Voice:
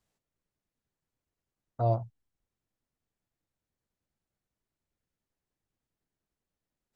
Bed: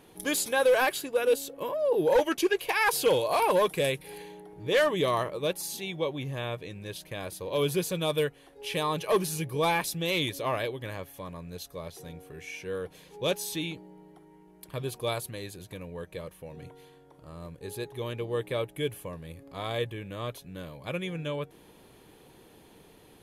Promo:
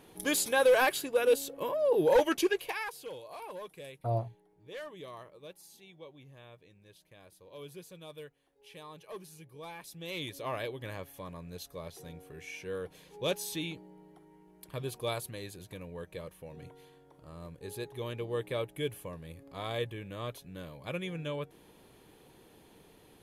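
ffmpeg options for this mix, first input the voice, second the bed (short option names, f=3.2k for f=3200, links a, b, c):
-filter_complex "[0:a]adelay=2250,volume=-4.5dB[a];[1:a]volume=15dB,afade=t=out:st=2.36:d=0.57:silence=0.11885,afade=t=in:st=9.77:d=1.14:silence=0.158489[b];[a][b]amix=inputs=2:normalize=0"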